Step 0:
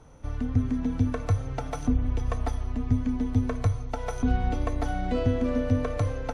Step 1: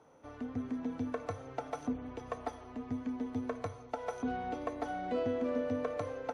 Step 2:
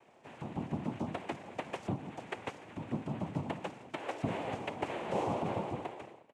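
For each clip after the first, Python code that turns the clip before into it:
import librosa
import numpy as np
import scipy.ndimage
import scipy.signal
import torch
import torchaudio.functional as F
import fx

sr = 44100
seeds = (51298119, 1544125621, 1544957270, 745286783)

y1 = scipy.signal.sosfilt(scipy.signal.butter(2, 420.0, 'highpass', fs=sr, output='sos'), x)
y1 = fx.tilt_eq(y1, sr, slope=-2.5)
y1 = y1 * 10.0 ** (-4.5 / 20.0)
y2 = fx.fade_out_tail(y1, sr, length_s=0.95)
y2 = fx.noise_vocoder(y2, sr, seeds[0], bands=4)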